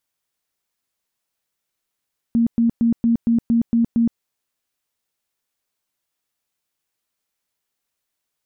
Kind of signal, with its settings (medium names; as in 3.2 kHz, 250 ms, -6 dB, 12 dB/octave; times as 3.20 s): tone bursts 232 Hz, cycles 27, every 0.23 s, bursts 8, -13 dBFS